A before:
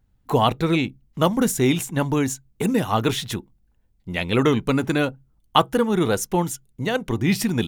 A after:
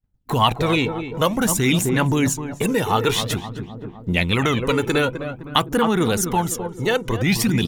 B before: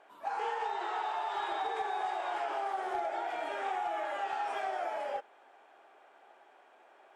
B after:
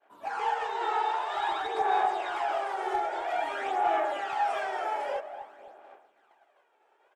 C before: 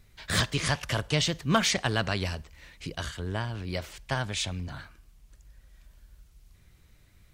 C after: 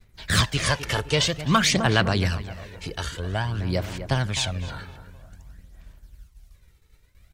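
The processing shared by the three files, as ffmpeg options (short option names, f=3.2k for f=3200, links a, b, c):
-filter_complex "[0:a]asplit=2[a][b];[b]adelay=257,lowpass=f=1.8k:p=1,volume=-11dB,asplit=2[c][d];[d]adelay=257,lowpass=f=1.8k:p=1,volume=0.51,asplit=2[e][f];[f]adelay=257,lowpass=f=1.8k:p=1,volume=0.51,asplit=2[g][h];[h]adelay=257,lowpass=f=1.8k:p=1,volume=0.51,asplit=2[i][j];[j]adelay=257,lowpass=f=1.8k:p=1,volume=0.51[k];[a][c][e][g][i][k]amix=inputs=6:normalize=0,agate=range=-33dB:threshold=-51dB:ratio=3:detection=peak,aphaser=in_gain=1:out_gain=1:delay=2.3:decay=0.49:speed=0.51:type=sinusoidal,acrossover=split=1100[l][m];[l]alimiter=limit=-16dB:level=0:latency=1[n];[n][m]amix=inputs=2:normalize=0,volume=3.5dB"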